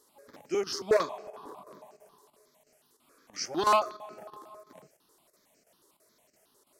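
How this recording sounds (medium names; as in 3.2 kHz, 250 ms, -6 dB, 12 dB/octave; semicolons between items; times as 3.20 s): chopped level 3 Hz, depth 65%, duty 90%; notches that jump at a steady rate 11 Hz 660–3500 Hz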